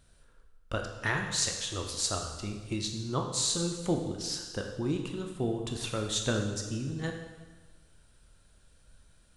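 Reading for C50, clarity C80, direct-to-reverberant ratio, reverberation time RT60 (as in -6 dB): 5.5 dB, 7.0 dB, 2.5 dB, 1.3 s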